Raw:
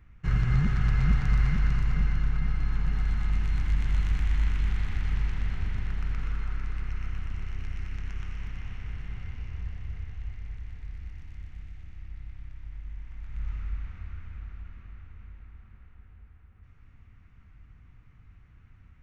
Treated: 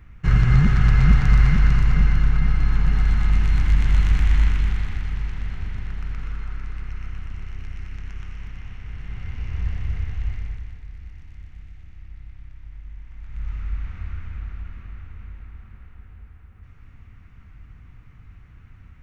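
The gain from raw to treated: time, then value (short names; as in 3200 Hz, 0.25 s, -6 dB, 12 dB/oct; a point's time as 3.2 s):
4.39 s +8.5 dB
5.12 s +1 dB
8.84 s +1 dB
9.69 s +10.5 dB
10.36 s +10.5 dB
10.84 s +1 dB
13.09 s +1 dB
14.04 s +8 dB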